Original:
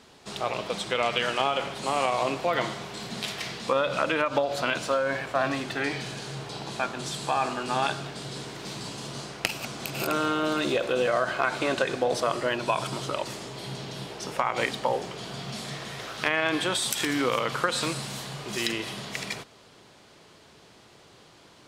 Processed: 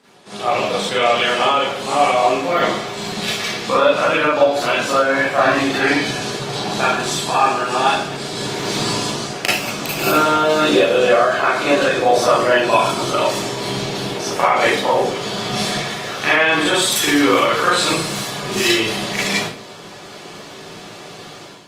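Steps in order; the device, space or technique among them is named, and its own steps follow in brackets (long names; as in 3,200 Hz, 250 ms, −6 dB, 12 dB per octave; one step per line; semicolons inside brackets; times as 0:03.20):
far-field microphone of a smart speaker (convolution reverb RT60 0.45 s, pre-delay 33 ms, DRR −8 dB; high-pass filter 130 Hz 24 dB per octave; automatic gain control; level −1.5 dB; Opus 32 kbit/s 48,000 Hz)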